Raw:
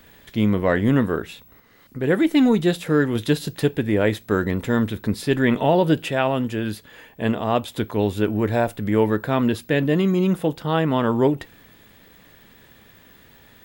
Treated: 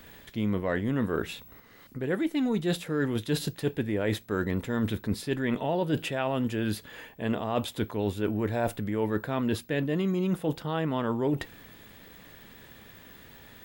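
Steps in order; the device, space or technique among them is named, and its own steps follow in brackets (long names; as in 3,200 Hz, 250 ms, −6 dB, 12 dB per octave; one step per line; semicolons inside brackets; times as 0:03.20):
compression on the reversed sound (reversed playback; downward compressor, threshold −25 dBFS, peak gain reduction 12 dB; reversed playback)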